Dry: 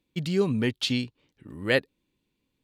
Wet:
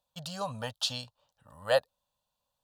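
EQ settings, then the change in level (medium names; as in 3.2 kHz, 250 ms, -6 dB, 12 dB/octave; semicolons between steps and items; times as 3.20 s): peaking EQ 190 Hz -2 dB; resonant low shelf 440 Hz -10.5 dB, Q 3; static phaser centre 900 Hz, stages 4; +2.0 dB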